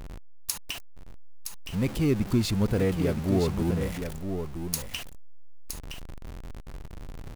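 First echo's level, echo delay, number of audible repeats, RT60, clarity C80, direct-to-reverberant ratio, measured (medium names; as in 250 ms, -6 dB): -7.5 dB, 967 ms, 1, no reverb, no reverb, no reverb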